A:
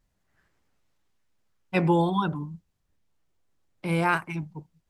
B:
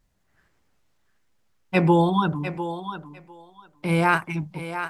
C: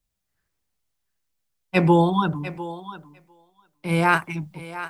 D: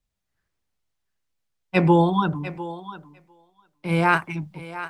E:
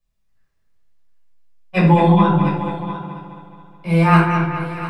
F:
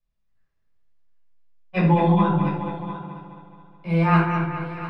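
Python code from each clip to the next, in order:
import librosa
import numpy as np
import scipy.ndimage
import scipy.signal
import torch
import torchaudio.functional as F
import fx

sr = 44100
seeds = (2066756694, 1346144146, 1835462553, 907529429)

y1 = fx.echo_thinned(x, sr, ms=701, feedback_pct=17, hz=320.0, wet_db=-9.0)
y1 = y1 * librosa.db_to_amplitude(4.0)
y2 = fx.quant_dither(y1, sr, seeds[0], bits=12, dither='triangular')
y2 = fx.band_widen(y2, sr, depth_pct=40)
y3 = fx.high_shelf(y2, sr, hz=7700.0, db=-9.5)
y4 = fx.echo_wet_lowpass(y3, sr, ms=211, feedback_pct=54, hz=3300.0, wet_db=-6.5)
y4 = fx.room_shoebox(y4, sr, seeds[1], volume_m3=600.0, walls='furnished', distance_m=5.8)
y4 = y4 * librosa.db_to_amplitude(-4.5)
y5 = fx.air_absorb(y4, sr, metres=110.0)
y5 = y5 * librosa.db_to_amplitude(-5.0)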